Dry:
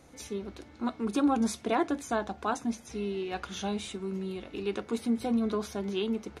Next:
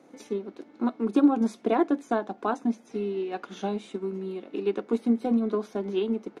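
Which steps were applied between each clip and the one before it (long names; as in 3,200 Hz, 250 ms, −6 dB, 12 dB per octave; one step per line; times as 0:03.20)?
high-pass filter 240 Hz 24 dB per octave
spectral tilt −3 dB per octave
transient designer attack +4 dB, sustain −3 dB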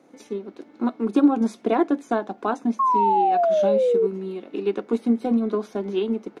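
automatic gain control gain up to 3 dB
sound drawn into the spectrogram fall, 0:02.79–0:04.07, 430–1,100 Hz −19 dBFS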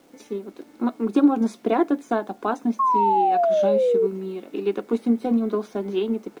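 bit-depth reduction 10 bits, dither none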